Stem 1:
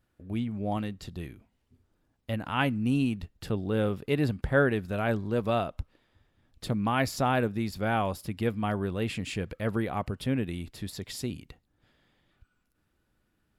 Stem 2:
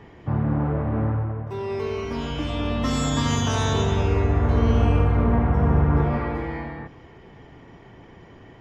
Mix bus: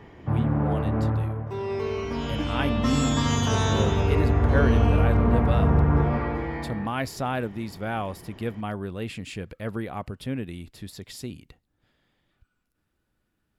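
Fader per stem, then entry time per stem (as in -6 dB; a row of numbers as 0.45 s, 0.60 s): -2.0 dB, -1.0 dB; 0.00 s, 0.00 s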